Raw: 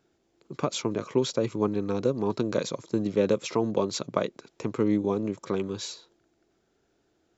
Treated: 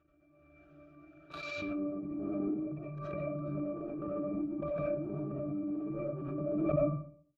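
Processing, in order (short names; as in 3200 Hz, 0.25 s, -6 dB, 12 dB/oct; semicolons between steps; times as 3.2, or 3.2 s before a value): whole clip reversed; de-hum 58.71 Hz, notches 2; reverb removal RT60 1.6 s; treble ducked by the level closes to 360 Hz, closed at -26 dBFS; bell 1900 Hz +11.5 dB 1.8 oct; sample leveller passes 3; octave resonator D, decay 0.39 s; on a send: echo 0.126 s -22.5 dB; on the sum: level quantiser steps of 15 dB; digital reverb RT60 0.51 s, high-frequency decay 0.55×, pre-delay 45 ms, DRR -6.5 dB; backwards sustainer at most 21 dB/s; gain +1 dB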